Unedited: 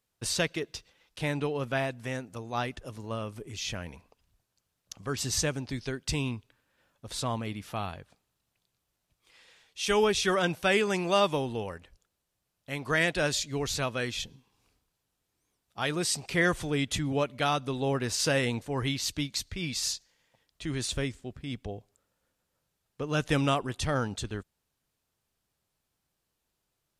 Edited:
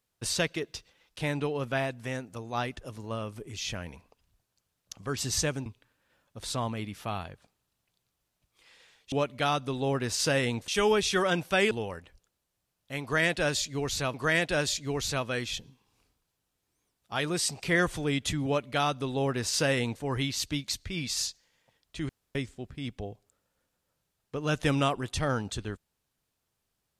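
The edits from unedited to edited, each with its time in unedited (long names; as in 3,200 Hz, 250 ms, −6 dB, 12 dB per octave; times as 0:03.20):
0:05.66–0:06.34: remove
0:10.83–0:11.49: remove
0:12.80–0:13.92: repeat, 2 plays
0:17.12–0:18.68: duplicate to 0:09.80
0:20.75–0:21.01: fill with room tone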